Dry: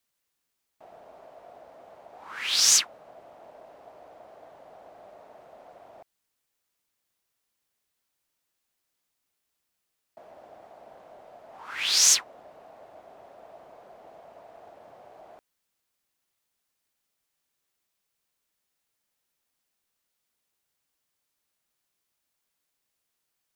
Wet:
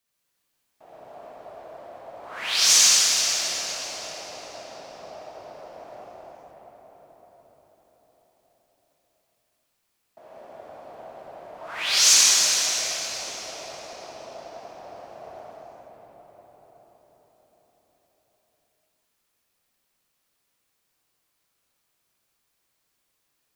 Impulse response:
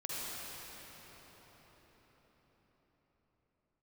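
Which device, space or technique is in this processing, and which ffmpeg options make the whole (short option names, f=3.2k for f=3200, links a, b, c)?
cathedral: -filter_complex "[1:a]atrim=start_sample=2205[a];[0:a][a]afir=irnorm=-1:irlink=0,volume=4dB"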